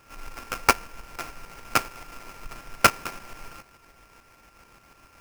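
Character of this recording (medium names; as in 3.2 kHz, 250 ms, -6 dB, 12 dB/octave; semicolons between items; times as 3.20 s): a buzz of ramps at a fixed pitch in blocks of 32 samples; tremolo saw up 6.9 Hz, depth 50%; aliases and images of a low sample rate 3.8 kHz, jitter 20%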